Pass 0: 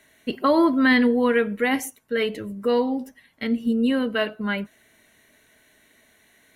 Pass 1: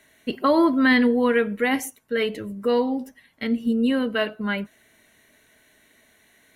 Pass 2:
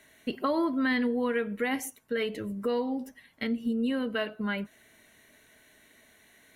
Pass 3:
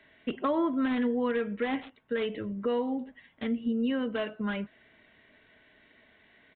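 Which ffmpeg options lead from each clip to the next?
-af anull
-af "acompressor=threshold=0.0316:ratio=2,volume=0.891"
-filter_complex "[0:a]acrossover=split=120|1400[s0][s1][s2];[s2]aeval=exprs='(mod(39.8*val(0)+1,2)-1)/39.8':c=same[s3];[s0][s1][s3]amix=inputs=3:normalize=0,aresample=8000,aresample=44100"

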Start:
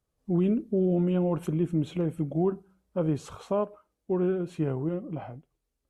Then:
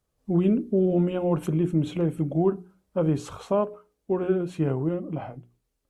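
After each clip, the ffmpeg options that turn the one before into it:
-af "bandreject=f=60:t=h:w=6,bandreject=f=120:t=h:w=6,bandreject=f=180:t=h:w=6,bandreject=f=240:t=h:w=6,bandreject=f=300:t=h:w=6,bandreject=f=360:t=h:w=6,bandreject=f=420:t=h:w=6,volume=1.58"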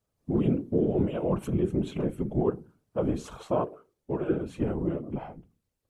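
-af "afftfilt=real='hypot(re,im)*cos(2*PI*random(0))':imag='hypot(re,im)*sin(2*PI*random(1))':win_size=512:overlap=0.75,volume=1.33"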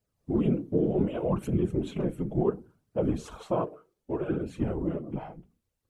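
-af "flanger=delay=0.4:depth=6.1:regen=-35:speed=0.67:shape=sinusoidal,volume=1.41"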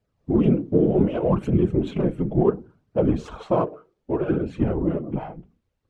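-af "adynamicsmooth=sensitivity=6.5:basefreq=4200,volume=2.24"

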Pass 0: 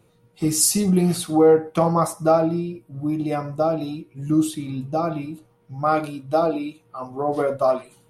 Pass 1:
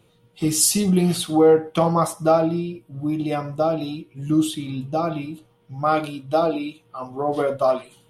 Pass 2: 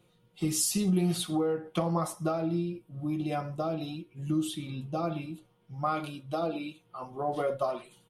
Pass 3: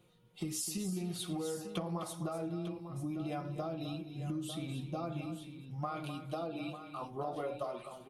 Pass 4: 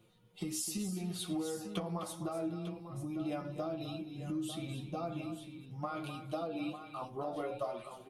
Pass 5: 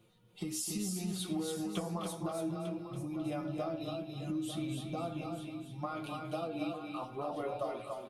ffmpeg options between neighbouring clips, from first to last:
-af "equalizer=f=3200:t=o:w=0.53:g=9.5"
-af "acompressor=threshold=0.126:ratio=5,aecho=1:1:5.6:0.42,volume=0.422"
-af "acompressor=threshold=0.02:ratio=6,aecho=1:1:256|899:0.282|0.282,volume=0.841"
-af "flanger=delay=8.9:depth=1.5:regen=36:speed=1.3:shape=sinusoidal,volume=1.58"
-af "aecho=1:1:282:0.562"

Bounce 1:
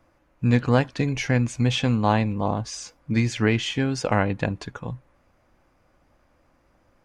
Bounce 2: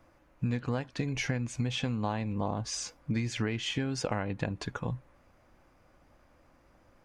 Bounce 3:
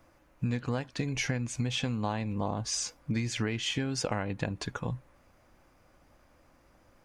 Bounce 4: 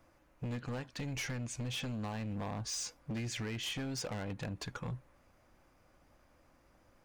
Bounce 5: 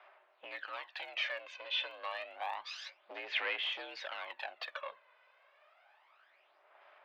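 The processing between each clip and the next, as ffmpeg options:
-af "acompressor=threshold=0.0398:ratio=8"
-af "highshelf=f=4500:g=6"
-af "asoftclip=type=hard:threshold=0.0282,volume=0.631"
-af "highpass=f=520:t=q:w=0.5412,highpass=f=520:t=q:w=1.307,lowpass=f=3500:t=q:w=0.5176,lowpass=f=3500:t=q:w=0.7071,lowpass=f=3500:t=q:w=1.932,afreqshift=63,aphaser=in_gain=1:out_gain=1:delay=2:decay=0.6:speed=0.29:type=sinusoidal,highshelf=f=2200:g=10.5"

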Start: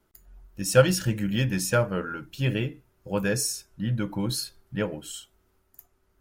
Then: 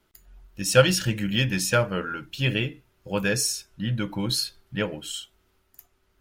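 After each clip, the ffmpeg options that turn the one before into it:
-af "equalizer=f=3200:t=o:w=1.7:g=8"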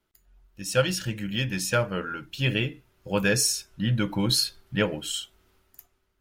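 -af "dynaudnorm=f=190:g=7:m=5.01,volume=0.376"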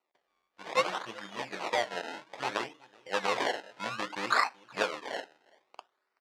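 -filter_complex "[0:a]asplit=2[s0][s1];[s1]adelay=379,volume=0.0708,highshelf=f=4000:g=-8.53[s2];[s0][s2]amix=inputs=2:normalize=0,acrusher=samples=26:mix=1:aa=0.000001:lfo=1:lforange=26:lforate=0.61,highpass=650,lowpass=4500"

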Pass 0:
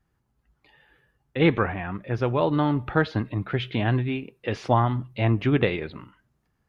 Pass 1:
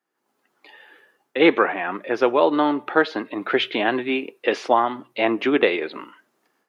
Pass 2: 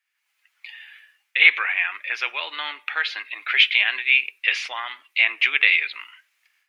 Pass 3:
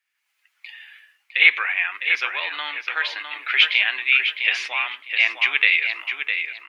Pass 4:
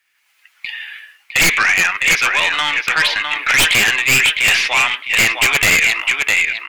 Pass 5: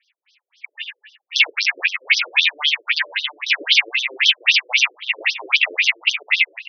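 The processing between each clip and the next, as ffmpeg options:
-af "highpass=f=300:w=0.5412,highpass=f=300:w=1.3066,dynaudnorm=f=150:g=3:m=4.73,volume=0.75"
-filter_complex "[0:a]asplit=2[s0][s1];[s1]alimiter=limit=0.266:level=0:latency=1,volume=0.944[s2];[s0][s2]amix=inputs=2:normalize=0,highpass=f=2300:t=q:w=3.5,volume=0.668"
-filter_complex "[0:a]asplit=2[s0][s1];[s1]adelay=657,lowpass=f=3800:p=1,volume=0.501,asplit=2[s2][s3];[s3]adelay=657,lowpass=f=3800:p=1,volume=0.24,asplit=2[s4][s5];[s5]adelay=657,lowpass=f=3800:p=1,volume=0.24[s6];[s0][s2][s4][s6]amix=inputs=4:normalize=0"
-af "aeval=exprs='(tanh(5.01*val(0)+0.35)-tanh(0.35))/5.01':c=same,aeval=exprs='0.282*sin(PI/2*2.51*val(0)/0.282)':c=same,volume=1.33"
-af "aexciter=amount=4:drive=5.5:freq=2200,afftfilt=real='re*between(b*sr/1024,400*pow(4500/400,0.5+0.5*sin(2*PI*3.8*pts/sr))/1.41,400*pow(4500/400,0.5+0.5*sin(2*PI*3.8*pts/sr))*1.41)':imag='im*between(b*sr/1024,400*pow(4500/400,0.5+0.5*sin(2*PI*3.8*pts/sr))/1.41,400*pow(4500/400,0.5+0.5*sin(2*PI*3.8*pts/sr))*1.41)':win_size=1024:overlap=0.75,volume=0.562"

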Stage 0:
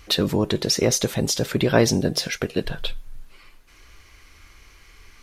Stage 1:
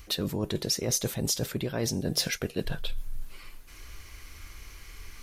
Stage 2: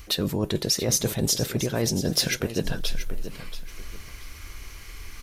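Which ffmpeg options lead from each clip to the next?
-af "lowshelf=f=190:g=5.5,areverse,acompressor=threshold=0.0501:ratio=12,areverse,highshelf=f=8300:g=11.5"
-af "aecho=1:1:681|1362|2043:0.251|0.0678|0.0183,volume=1.68"

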